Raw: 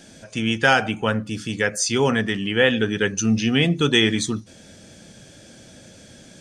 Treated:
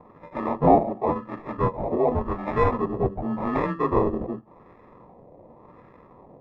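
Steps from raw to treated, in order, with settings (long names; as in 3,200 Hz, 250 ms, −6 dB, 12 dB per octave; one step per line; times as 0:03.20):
partials spread apart or drawn together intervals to 90%
in parallel at −2 dB: brickwall limiter −17.5 dBFS, peak gain reduction 11 dB
on the sum: resonant band-pass 1,100 Hz, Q 0.56
sample-rate reduction 1,500 Hz, jitter 0%
auto-filter low-pass sine 0.89 Hz 650–1,500 Hz
level −2.5 dB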